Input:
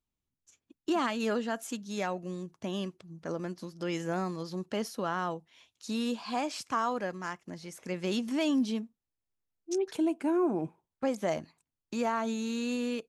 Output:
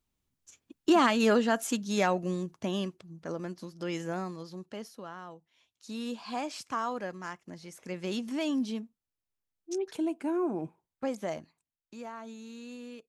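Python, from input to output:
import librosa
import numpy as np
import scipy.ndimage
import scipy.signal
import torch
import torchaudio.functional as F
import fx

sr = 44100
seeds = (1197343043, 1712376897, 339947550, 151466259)

y = fx.gain(x, sr, db=fx.line((2.25, 6.5), (3.23, -1.0), (4.01, -1.0), (5.26, -12.5), (6.26, -2.5), (11.15, -2.5), (11.95, -12.0)))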